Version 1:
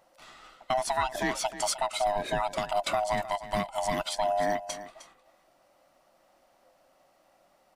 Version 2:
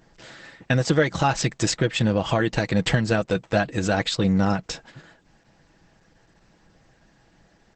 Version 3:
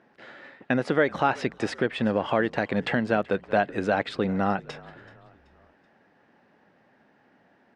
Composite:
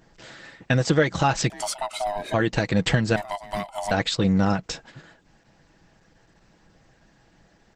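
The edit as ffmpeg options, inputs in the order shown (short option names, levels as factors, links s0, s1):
-filter_complex "[0:a]asplit=2[s0][s1];[1:a]asplit=3[s2][s3][s4];[s2]atrim=end=1.502[s5];[s0]atrim=start=1.498:end=2.342[s6];[s3]atrim=start=2.338:end=3.162[s7];[s1]atrim=start=3.158:end=3.912[s8];[s4]atrim=start=3.908[s9];[s5][s6]acrossfade=d=0.004:c1=hsin:c2=hsin[s10];[s10][s7]acrossfade=d=0.004:c1=hsin:c2=hsin[s11];[s11][s8]acrossfade=d=0.004:c1=hsin:c2=hsin[s12];[s12][s9]acrossfade=d=0.004:c1=hsin:c2=hsin"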